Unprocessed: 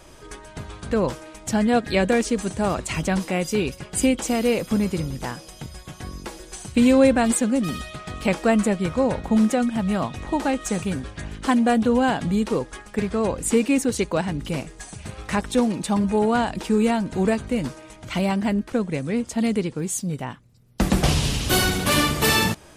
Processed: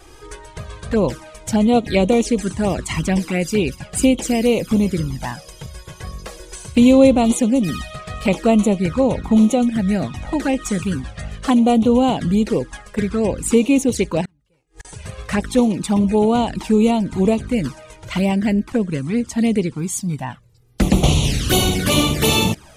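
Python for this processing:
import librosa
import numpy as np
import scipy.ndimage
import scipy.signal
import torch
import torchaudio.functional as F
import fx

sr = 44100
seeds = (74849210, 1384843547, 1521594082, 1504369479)

y = fx.gate_flip(x, sr, shuts_db=-26.0, range_db=-38, at=(14.25, 14.85))
y = fx.env_flanger(y, sr, rest_ms=2.7, full_db=-17.0)
y = y * 10.0 ** (5.5 / 20.0)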